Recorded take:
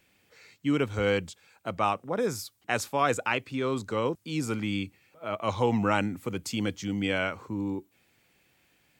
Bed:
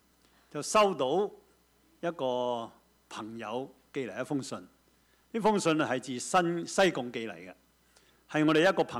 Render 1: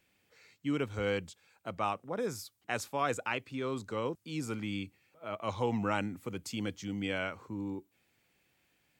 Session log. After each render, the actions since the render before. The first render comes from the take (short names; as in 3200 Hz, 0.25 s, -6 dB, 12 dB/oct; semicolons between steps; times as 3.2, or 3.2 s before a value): gain -6.5 dB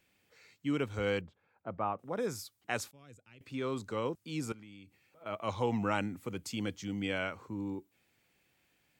1.21–1.99 LPF 1300 Hz; 2.91–3.41 passive tone stack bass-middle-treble 10-0-1; 4.52–5.26 compressor 5:1, threshold -51 dBFS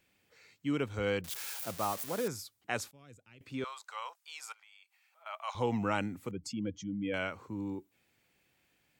1.24–2.28 switching spikes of -28 dBFS; 3.64–5.55 steep high-pass 740 Hz; 6.31–7.14 spectral contrast raised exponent 1.8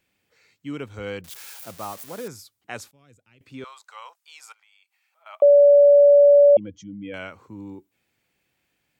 5.42–6.57 bleep 574 Hz -9 dBFS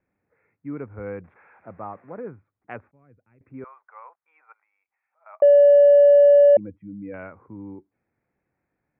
Wiener smoothing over 15 samples; steep low-pass 2700 Hz 72 dB/oct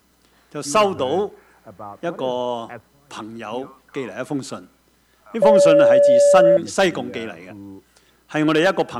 add bed +7.5 dB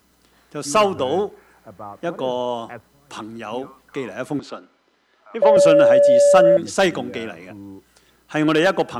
4.39–5.57 three-band isolator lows -20 dB, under 260 Hz, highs -22 dB, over 5100 Hz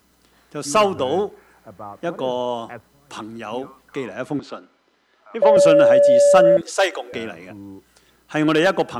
4.06–4.5 high shelf 8600 Hz -10 dB; 6.61–7.13 steep high-pass 410 Hz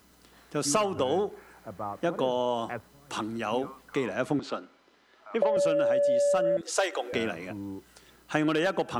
compressor 16:1, threshold -22 dBFS, peak gain reduction 15 dB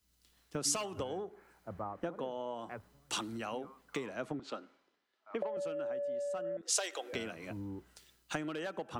compressor 8:1, threshold -36 dBFS, peak gain reduction 15.5 dB; three-band expander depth 100%